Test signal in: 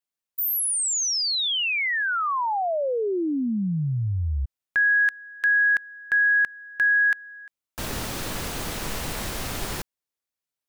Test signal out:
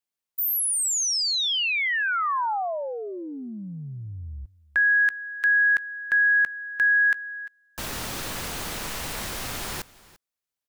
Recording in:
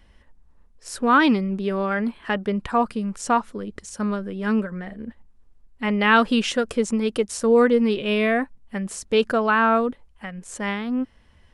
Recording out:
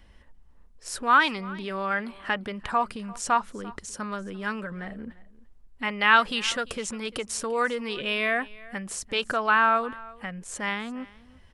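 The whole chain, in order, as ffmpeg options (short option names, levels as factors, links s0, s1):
-filter_complex "[0:a]acrossover=split=740[s0][s1];[s0]acompressor=threshold=0.0158:ratio=6:attack=6.3:release=47:detection=peak[s2];[s2][s1]amix=inputs=2:normalize=0,aecho=1:1:344:0.0891"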